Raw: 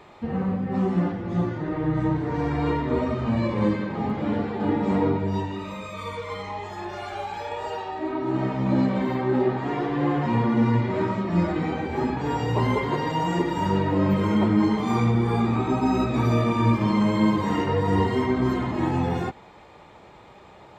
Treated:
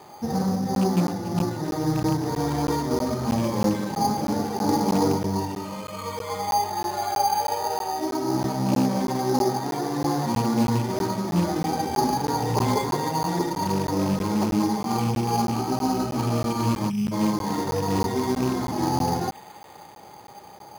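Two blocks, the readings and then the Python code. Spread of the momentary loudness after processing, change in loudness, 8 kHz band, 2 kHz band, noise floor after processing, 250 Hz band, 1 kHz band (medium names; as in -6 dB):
5 LU, -0.5 dB, no reading, -4.0 dB, -45 dBFS, -1.0 dB, +3.0 dB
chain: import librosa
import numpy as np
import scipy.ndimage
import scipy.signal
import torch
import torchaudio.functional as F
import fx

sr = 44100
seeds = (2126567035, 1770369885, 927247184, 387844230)

p1 = fx.rattle_buzz(x, sr, strikes_db=-20.0, level_db=-25.0)
p2 = scipy.signal.sosfilt(scipy.signal.butter(2, 100.0, 'highpass', fs=sr, output='sos'), p1)
p3 = fx.spec_erase(p2, sr, start_s=16.9, length_s=0.22, low_hz=230.0, high_hz=2300.0)
p4 = fx.rider(p3, sr, range_db=3, speed_s=2.0)
p5 = fx.air_absorb(p4, sr, metres=330.0)
p6 = fx.small_body(p5, sr, hz=(820.0, 2700.0), ring_ms=45, db=12)
p7 = p6 + fx.echo_wet_highpass(p6, sr, ms=279, feedback_pct=77, hz=2500.0, wet_db=-10, dry=0)
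p8 = np.repeat(scipy.signal.resample_poly(p7, 1, 8), 8)[:len(p7)]
p9 = fx.buffer_crackle(p8, sr, first_s=0.75, period_s=0.32, block=512, kind='zero')
y = fx.doppler_dist(p9, sr, depth_ms=0.19)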